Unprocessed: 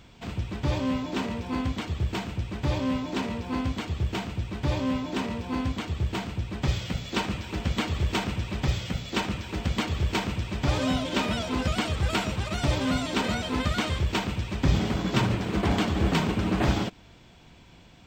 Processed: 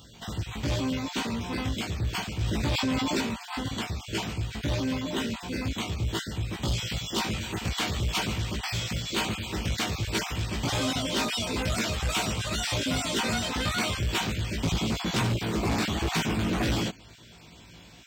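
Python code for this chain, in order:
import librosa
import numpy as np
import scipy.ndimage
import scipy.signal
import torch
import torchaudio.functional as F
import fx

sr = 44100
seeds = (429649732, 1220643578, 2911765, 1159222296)

y = fx.spec_dropout(x, sr, seeds[0], share_pct=24)
y = scipy.signal.sosfilt(scipy.signal.butter(2, 53.0, 'highpass', fs=sr, output='sos'), y)
y = fx.high_shelf(y, sr, hz=3800.0, db=10.5)
y = fx.doubler(y, sr, ms=18.0, db=-3)
y = 10.0 ** (-21.5 / 20.0) * np.tanh(y / 10.0 ** (-21.5 / 20.0))
y = fx.env_flatten(y, sr, amount_pct=70, at=(2.41, 3.21))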